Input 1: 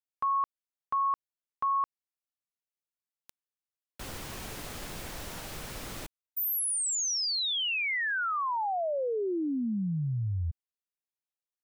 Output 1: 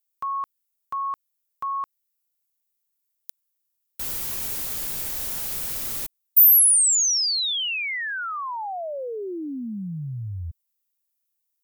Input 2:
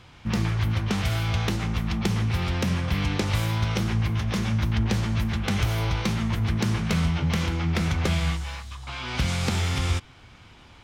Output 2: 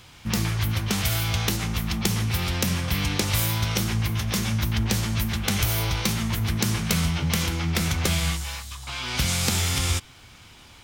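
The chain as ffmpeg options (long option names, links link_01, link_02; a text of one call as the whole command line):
ffmpeg -i in.wav -af "aemphasis=mode=production:type=75fm" out.wav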